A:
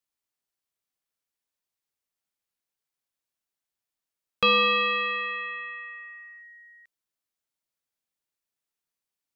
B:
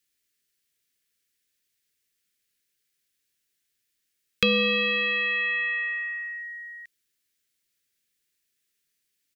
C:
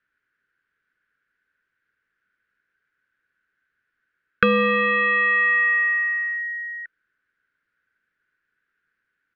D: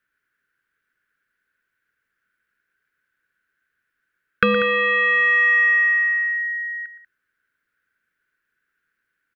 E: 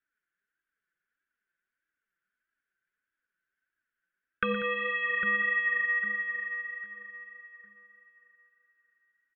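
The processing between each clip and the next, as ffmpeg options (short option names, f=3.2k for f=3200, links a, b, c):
-filter_complex "[0:a]firequalizer=gain_entry='entry(460,0);entry(750,-19);entry(1700,4)':delay=0.05:min_phase=1,acrossover=split=490[a][b];[b]acompressor=threshold=-30dB:ratio=6[c];[a][c]amix=inputs=2:normalize=0,volume=7.5dB"
-af "lowpass=f=1.5k:t=q:w=11,volume=4.5dB"
-af "crystalizer=i=1:c=0,aecho=1:1:118|190:0.211|0.188,aeval=exprs='0.944*(cos(1*acos(clip(val(0)/0.944,-1,1)))-cos(1*PI/2))+0.00596*(cos(7*acos(clip(val(0)/0.944,-1,1)))-cos(7*PI/2))':c=same"
-filter_complex "[0:a]aresample=8000,aresample=44100,asplit=2[a][b];[b]adelay=803,lowpass=f=2k:p=1,volume=-9dB,asplit=2[c][d];[d]adelay=803,lowpass=f=2k:p=1,volume=0.33,asplit=2[e][f];[f]adelay=803,lowpass=f=2k:p=1,volume=0.33,asplit=2[g][h];[h]adelay=803,lowpass=f=2k:p=1,volume=0.33[i];[a][c][e][g][i]amix=inputs=5:normalize=0,flanger=delay=3:depth=2.9:regen=27:speed=1.6:shape=sinusoidal,volume=-8.5dB"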